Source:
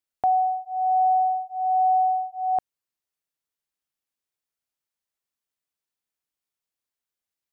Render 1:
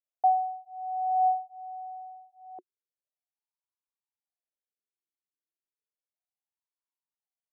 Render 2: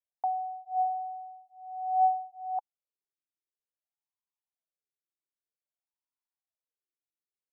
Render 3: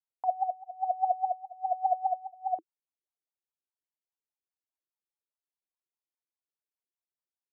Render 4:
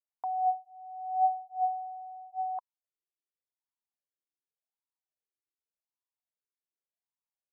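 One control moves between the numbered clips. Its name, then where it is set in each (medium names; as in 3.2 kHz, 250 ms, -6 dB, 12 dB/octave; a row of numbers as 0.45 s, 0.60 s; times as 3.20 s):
wah-wah, rate: 0.33 Hz, 0.53 Hz, 4.9 Hz, 0.87 Hz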